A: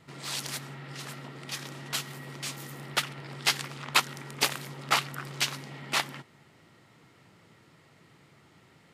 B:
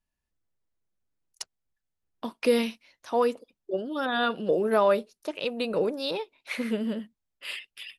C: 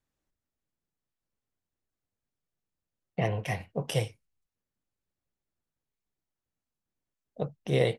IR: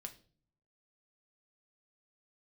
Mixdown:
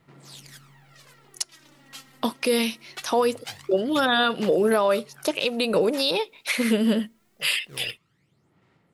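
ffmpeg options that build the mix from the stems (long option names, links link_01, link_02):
-filter_complex "[0:a]aphaser=in_gain=1:out_gain=1:delay=3.8:decay=0.65:speed=0.23:type=sinusoidal,volume=-15.5dB,asplit=2[link_01][link_02];[link_02]volume=-5dB[link_03];[1:a]highshelf=frequency=3600:gain=10.5,dynaudnorm=framelen=180:gausssize=5:maxgain=11dB,volume=1dB,asplit=2[link_04][link_05];[link_05]volume=-20.5dB[link_06];[2:a]acrusher=samples=33:mix=1:aa=0.000001:lfo=1:lforange=52.8:lforate=0.77,volume=-16.5dB[link_07];[3:a]atrim=start_sample=2205[link_08];[link_03][link_06]amix=inputs=2:normalize=0[link_09];[link_09][link_08]afir=irnorm=-1:irlink=0[link_10];[link_01][link_04][link_07][link_10]amix=inputs=4:normalize=0,alimiter=limit=-12dB:level=0:latency=1:release=322"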